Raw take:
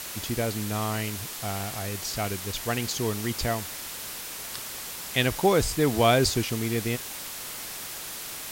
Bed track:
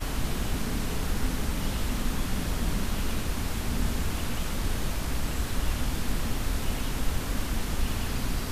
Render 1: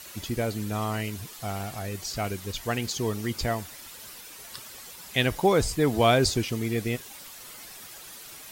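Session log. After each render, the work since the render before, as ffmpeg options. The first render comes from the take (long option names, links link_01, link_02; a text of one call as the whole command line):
ffmpeg -i in.wav -af "afftdn=noise_reduction=10:noise_floor=-38" out.wav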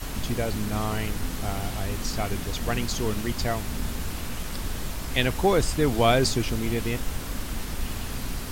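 ffmpeg -i in.wav -i bed.wav -filter_complex "[1:a]volume=-2.5dB[link_01];[0:a][link_01]amix=inputs=2:normalize=0" out.wav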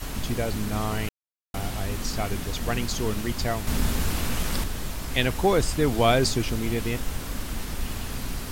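ffmpeg -i in.wav -filter_complex "[0:a]asettb=1/sr,asplit=3[link_01][link_02][link_03];[link_01]atrim=end=3.674[link_04];[link_02]atrim=start=3.67:end=4.64,asetpts=PTS-STARTPTS,afade=type=in:duration=0.004:curve=qsin,afade=type=out:start_time=0.966:duration=0.004:curve=qsin,acontrast=42[link_05];[link_03]atrim=start=4.636[link_06];[link_04][link_05]acrossfade=duration=0.004:curve1=hsin:curve2=qsin[link_07];[link_07][link_06]acrossfade=duration=0.004:curve1=qsin:curve2=hsin,asplit=3[link_08][link_09][link_10];[link_08]atrim=end=1.09,asetpts=PTS-STARTPTS,afade=type=out:start_time=1.086:duration=0.004:curve=hsin[link_11];[link_09]atrim=start=1.09:end=1.54,asetpts=PTS-STARTPTS,volume=0[link_12];[link_10]atrim=start=1.54,asetpts=PTS-STARTPTS,afade=type=in:duration=0.004:curve=hsin[link_13];[link_11][link_12][link_13]concat=n=3:v=0:a=1" out.wav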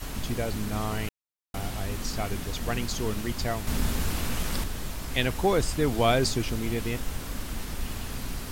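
ffmpeg -i in.wav -af "volume=-2.5dB" out.wav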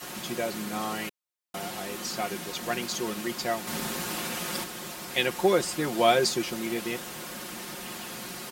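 ffmpeg -i in.wav -af "highpass=250,aecho=1:1:5.6:0.7" out.wav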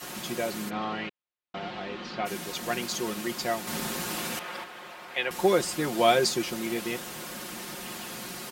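ffmpeg -i in.wav -filter_complex "[0:a]asplit=3[link_01][link_02][link_03];[link_01]afade=type=out:start_time=0.69:duration=0.02[link_04];[link_02]lowpass=frequency=3800:width=0.5412,lowpass=frequency=3800:width=1.3066,afade=type=in:start_time=0.69:duration=0.02,afade=type=out:start_time=2.25:duration=0.02[link_05];[link_03]afade=type=in:start_time=2.25:duration=0.02[link_06];[link_04][link_05][link_06]amix=inputs=3:normalize=0,asettb=1/sr,asplit=3[link_07][link_08][link_09];[link_07]atrim=end=4.394[link_10];[link_08]atrim=start=4.39:end=5.31,asetpts=PTS-STARTPTS,afade=type=in:duration=0.004:curve=qsin,afade=type=out:start_time=0.916:duration=0.004:curve=qsin,acrossover=split=470 3200:gain=0.2 1 0.126[link_11][link_12][link_13];[link_11][link_12][link_13]amix=inputs=3:normalize=0[link_14];[link_09]atrim=start=5.306[link_15];[link_10][link_14]acrossfade=duration=0.004:curve1=hsin:curve2=qsin[link_16];[link_16][link_15]acrossfade=duration=0.004:curve1=qsin:curve2=hsin" out.wav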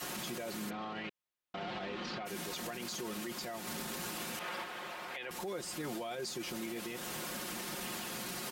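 ffmpeg -i in.wav -af "acompressor=threshold=-34dB:ratio=6,alimiter=level_in=7.5dB:limit=-24dB:level=0:latency=1:release=17,volume=-7.5dB" out.wav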